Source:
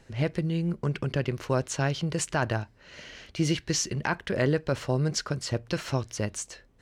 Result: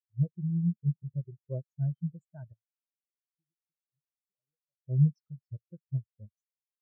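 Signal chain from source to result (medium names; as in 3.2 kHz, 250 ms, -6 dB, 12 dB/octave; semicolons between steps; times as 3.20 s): 2.53–4.76 s: compression 5:1, threshold -41 dBFS, peak gain reduction 18 dB; spectral contrast expander 4:1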